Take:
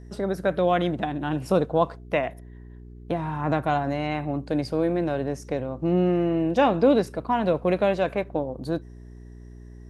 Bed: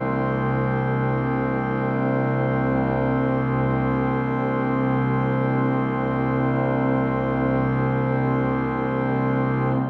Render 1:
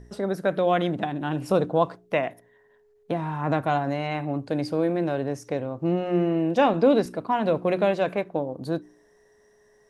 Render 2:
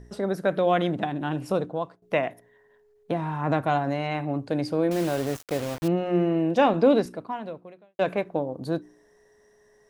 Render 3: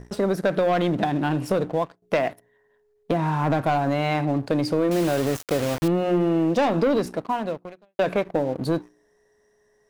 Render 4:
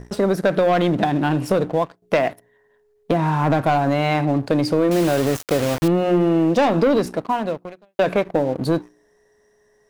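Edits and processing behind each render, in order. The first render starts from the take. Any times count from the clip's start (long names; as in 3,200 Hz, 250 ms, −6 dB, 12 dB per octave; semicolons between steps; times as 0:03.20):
hum removal 60 Hz, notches 6
0:01.23–0:02.02: fade out, to −16.5 dB; 0:04.91–0:05.88: bit-depth reduction 6 bits, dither none; 0:06.94–0:07.99: fade out quadratic
leveller curve on the samples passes 2; downward compressor, threshold −18 dBFS, peak gain reduction 6.5 dB
level +4 dB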